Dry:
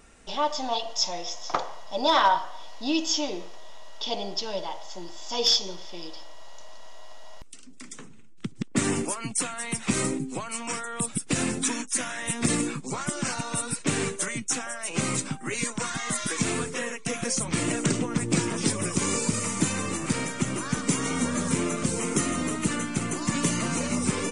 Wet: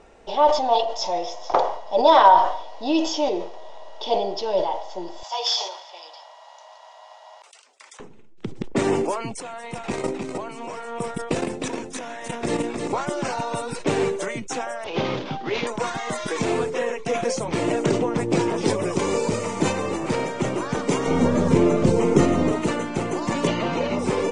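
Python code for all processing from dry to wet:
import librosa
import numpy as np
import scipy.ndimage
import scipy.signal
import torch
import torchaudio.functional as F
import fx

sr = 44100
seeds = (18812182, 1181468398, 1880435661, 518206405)

y = fx.chain(x, sr, fx.highpass(hz=740.0, slope=24),
    fx.peak_eq(hz=9700.0, db=5.5, octaves=0.57), at=(5.23, 8.0))
y = fx.chain(y, sr, fx.level_steps(step_db=13),
    fx.echo_single(ms=309, db=-4.5), at=(9.4, 12.93))
y = fx.chain(y, sr, fx.cvsd(bps=32000),
    fx.peak_eq(hz=3300.0, db=7.5, octaves=0.42), at=(14.84, 15.67))
y = fx.chain(y, sr, fx.lowpass(hz=9000.0, slope=12),
    fx.low_shelf(hz=270.0, db=11.5), at=(21.07, 22.52))
y = fx.chain(y, sr, fx.lowpass(hz=4200.0, slope=12),
    fx.peak_eq(hz=3300.0, db=6.0, octaves=0.91), at=(23.47, 23.99))
y = scipy.signal.sosfilt(scipy.signal.butter(2, 4900.0, 'lowpass', fs=sr, output='sos'), y)
y = fx.band_shelf(y, sr, hz=580.0, db=10.0, octaves=1.7)
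y = fx.sustainer(y, sr, db_per_s=76.0)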